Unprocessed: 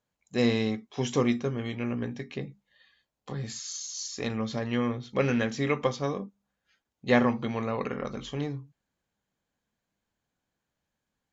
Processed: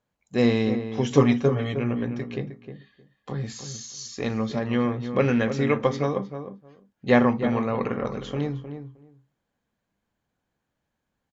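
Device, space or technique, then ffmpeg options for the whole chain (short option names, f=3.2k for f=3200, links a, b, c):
behind a face mask: -filter_complex "[0:a]highshelf=f=3.2k:g=-8,asettb=1/sr,asplit=3[a][b][c];[a]atrim=end=1.104[d];[b]atrim=start=1.1:end=1.74,asetpts=PTS-STARTPTS,afade=t=in:d=0.004:c=qsin,afade=t=out:st=0.636:d=0.004:c=qsin,aecho=1:1:7.1:0.96,atrim=end_sample=28224[e];[c]atrim=start=1.736[f];[d][e]acrossfade=d=0.004:c1=hsin:c2=qsin[g];[g][f]acrossfade=d=0.004:c1=qsin:c2=hsin,asplit=2[h][i];[i]adelay=310,lowpass=f=1.5k:p=1,volume=-9dB,asplit=2[j][k];[k]adelay=310,lowpass=f=1.5k:p=1,volume=0.16[l];[h][j][l]amix=inputs=3:normalize=0,volume=4.5dB"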